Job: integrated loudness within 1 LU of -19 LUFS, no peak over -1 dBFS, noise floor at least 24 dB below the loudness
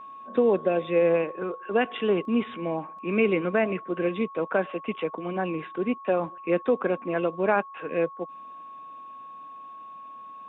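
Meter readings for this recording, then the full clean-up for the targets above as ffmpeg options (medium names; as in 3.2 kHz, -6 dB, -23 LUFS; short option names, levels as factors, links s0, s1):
steady tone 1.1 kHz; tone level -40 dBFS; loudness -26.5 LUFS; peak level -10.0 dBFS; loudness target -19.0 LUFS
-> -af "bandreject=f=1100:w=30"
-af "volume=2.37"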